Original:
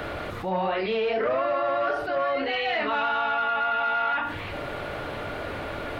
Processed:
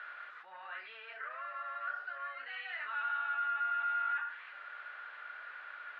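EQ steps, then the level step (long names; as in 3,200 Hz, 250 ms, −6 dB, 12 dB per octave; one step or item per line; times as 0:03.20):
four-pole ladder band-pass 1,700 Hz, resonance 60%
notch filter 2,200 Hz, Q 24
−3.5 dB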